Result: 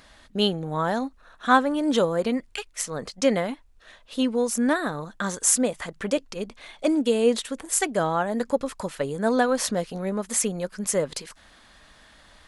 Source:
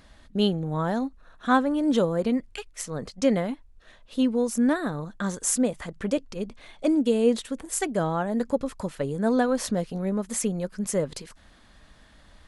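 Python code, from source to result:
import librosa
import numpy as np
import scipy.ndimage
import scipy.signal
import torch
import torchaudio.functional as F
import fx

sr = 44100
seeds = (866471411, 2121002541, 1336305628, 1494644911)

y = fx.low_shelf(x, sr, hz=380.0, db=-10.0)
y = y * librosa.db_to_amplitude(5.5)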